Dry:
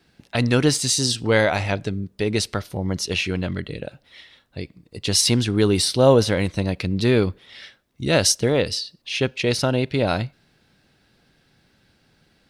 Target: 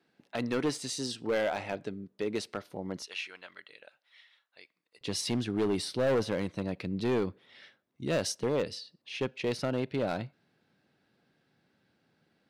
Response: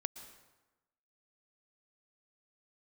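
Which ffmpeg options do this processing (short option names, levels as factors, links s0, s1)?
-af "asetnsamples=n=441:p=0,asendcmd='3.02 highpass f 1200;5.01 highpass f 150',highpass=230,highshelf=f=2900:g=-10.5,asoftclip=type=hard:threshold=0.168,volume=0.398"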